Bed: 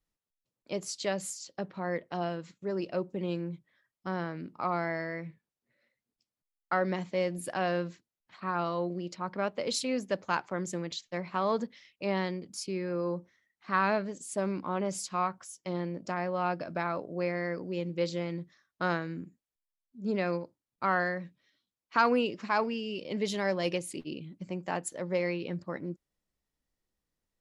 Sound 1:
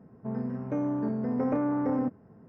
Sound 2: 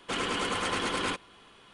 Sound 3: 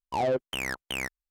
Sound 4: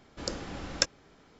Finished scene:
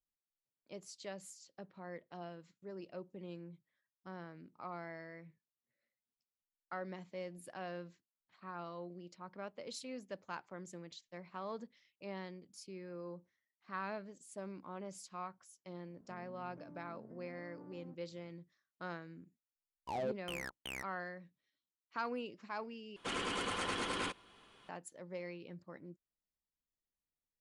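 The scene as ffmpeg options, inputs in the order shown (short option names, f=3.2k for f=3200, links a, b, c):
-filter_complex "[0:a]volume=-14.5dB[a];[1:a]acompressor=threshold=-36dB:ratio=6:attack=3.2:release=140:knee=1:detection=peak[b];[a]asplit=2[c][d];[c]atrim=end=22.964[e];[2:a]atrim=end=1.73,asetpts=PTS-STARTPTS,volume=-7.5dB[f];[d]atrim=start=24.686[g];[b]atrim=end=2.48,asetpts=PTS-STARTPTS,volume=-17.5dB,afade=t=in:d=0.004:c=hsin,afade=t=out:st=2.476:d=0.004:c=hsin,adelay=15860[h];[3:a]atrim=end=1.3,asetpts=PTS-STARTPTS,volume=-12dB,afade=t=in:d=0.004:c=hsin,afade=t=out:st=1.296:d=0.004:c=hsin,adelay=19750[i];[e][f]acrossfade=d=0.004:c1=hsin:c2=hsin[j];[j][g]acrossfade=d=0.004:c1=hsin:c2=hsin[k];[k][h][i]amix=inputs=3:normalize=0"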